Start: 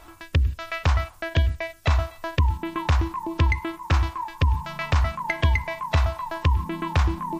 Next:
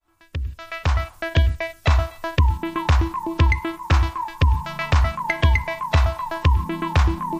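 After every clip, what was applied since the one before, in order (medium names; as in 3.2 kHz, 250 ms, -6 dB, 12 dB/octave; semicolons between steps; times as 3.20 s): fade-in on the opening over 1.26 s; trim +3.5 dB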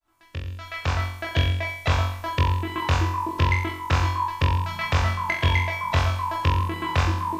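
bass shelf 190 Hz -3.5 dB; flutter echo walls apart 3.8 m, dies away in 0.64 s; trim -4 dB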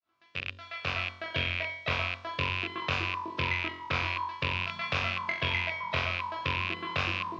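rattle on loud lows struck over -29 dBFS, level -13 dBFS; cabinet simulation 170–4800 Hz, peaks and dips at 310 Hz -7 dB, 870 Hz -9 dB, 1.8 kHz -4 dB; vibrato 0.46 Hz 41 cents; trim -4.5 dB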